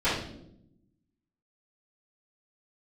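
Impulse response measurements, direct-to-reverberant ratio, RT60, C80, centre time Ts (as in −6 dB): −15.0 dB, 0.75 s, 7.0 dB, 47 ms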